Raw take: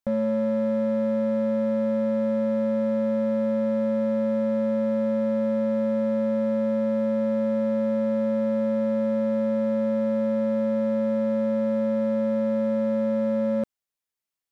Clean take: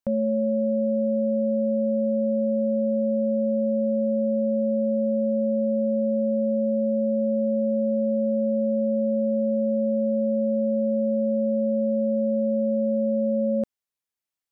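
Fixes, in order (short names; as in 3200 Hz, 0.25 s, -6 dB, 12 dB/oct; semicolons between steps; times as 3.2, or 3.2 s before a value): clip repair -19.5 dBFS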